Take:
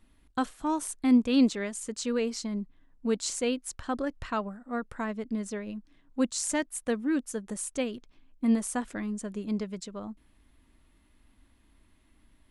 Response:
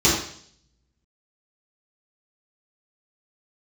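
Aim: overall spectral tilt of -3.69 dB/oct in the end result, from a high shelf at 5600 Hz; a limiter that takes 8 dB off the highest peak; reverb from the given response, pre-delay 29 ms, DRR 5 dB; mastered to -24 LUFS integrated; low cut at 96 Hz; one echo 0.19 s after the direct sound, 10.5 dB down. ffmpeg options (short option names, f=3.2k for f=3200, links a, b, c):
-filter_complex "[0:a]highpass=96,highshelf=f=5.6k:g=8.5,alimiter=limit=-20dB:level=0:latency=1,aecho=1:1:190:0.299,asplit=2[a][b];[1:a]atrim=start_sample=2205,adelay=29[c];[b][c]afir=irnorm=-1:irlink=0,volume=-24dB[d];[a][d]amix=inputs=2:normalize=0,volume=5dB"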